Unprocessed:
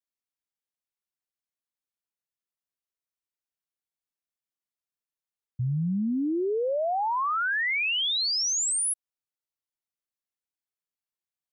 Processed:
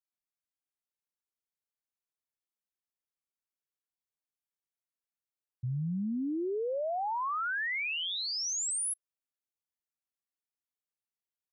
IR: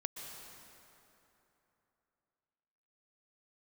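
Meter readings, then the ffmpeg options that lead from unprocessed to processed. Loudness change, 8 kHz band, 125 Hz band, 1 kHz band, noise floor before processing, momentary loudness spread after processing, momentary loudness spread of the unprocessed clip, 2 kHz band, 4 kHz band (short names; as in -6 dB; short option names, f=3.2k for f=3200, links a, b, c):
-6.5 dB, -6.5 dB, -6.0 dB, -6.0 dB, under -85 dBFS, 5 LU, 5 LU, -6.5 dB, -8.5 dB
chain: -filter_complex "[0:a]acrossover=split=3800[a][b];[a]adelay=40[c];[c][b]amix=inputs=2:normalize=0,volume=-6dB"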